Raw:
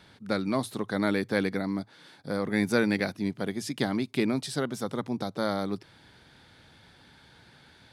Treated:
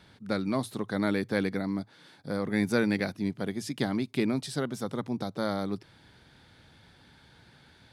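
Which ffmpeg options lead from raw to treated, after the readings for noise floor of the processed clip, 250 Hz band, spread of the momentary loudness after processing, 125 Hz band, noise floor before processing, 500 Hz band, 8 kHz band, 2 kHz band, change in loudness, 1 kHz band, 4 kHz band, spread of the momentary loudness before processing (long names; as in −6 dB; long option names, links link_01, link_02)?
−59 dBFS, −0.5 dB, 8 LU, 0.0 dB, −57 dBFS, −2.0 dB, −2.5 dB, −2.5 dB, −1.0 dB, −2.5 dB, −2.5 dB, 8 LU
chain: -af "lowshelf=frequency=220:gain=4,volume=-2.5dB"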